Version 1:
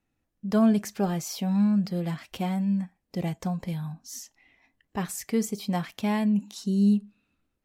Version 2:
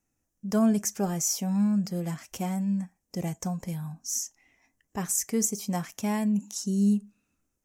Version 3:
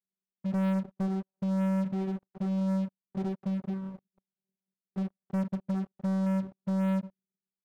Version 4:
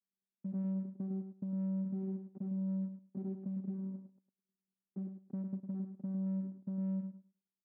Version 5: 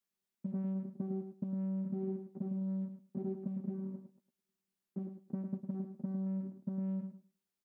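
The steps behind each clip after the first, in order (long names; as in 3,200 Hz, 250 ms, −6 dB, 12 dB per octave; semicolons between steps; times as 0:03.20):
high shelf with overshoot 5,000 Hz +7.5 dB, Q 3; level −2 dB
formant resonators in series u; channel vocoder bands 8, saw 191 Hz; leveller curve on the samples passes 5
downward compressor 5 to 1, threshold −35 dBFS, peak gain reduction 7.5 dB; resonant band-pass 260 Hz, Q 2.4; repeating echo 105 ms, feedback 16%, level −8 dB; level +1.5 dB
double-tracking delay 13 ms −7.5 dB; level +4 dB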